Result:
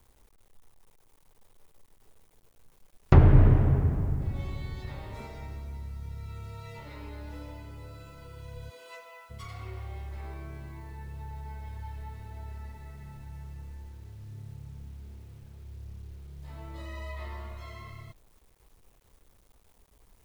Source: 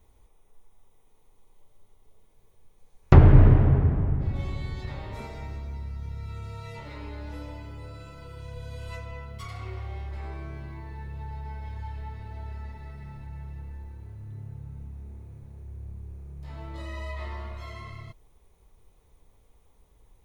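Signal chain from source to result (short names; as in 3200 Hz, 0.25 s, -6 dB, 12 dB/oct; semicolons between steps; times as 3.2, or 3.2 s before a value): 8.69–9.29 HPF 280 Hz -> 690 Hz 24 dB/oct; bit-crush 10-bit; gain -3.5 dB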